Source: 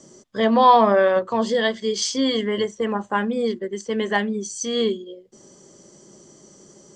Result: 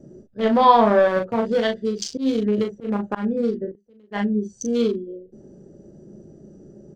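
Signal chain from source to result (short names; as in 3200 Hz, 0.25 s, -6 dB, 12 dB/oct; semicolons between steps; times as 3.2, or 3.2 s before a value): Wiener smoothing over 41 samples; in parallel at +1 dB: compressor, threshold -31 dBFS, peak gain reduction 20 dB; on the sum: low shelf 130 Hz +9.5 dB; 3.7–4.11 flipped gate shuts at -31 dBFS, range -30 dB; on a send: early reflections 14 ms -17 dB, 38 ms -5.5 dB; on the sum: auto swell 0.12 s; gain -2.5 dB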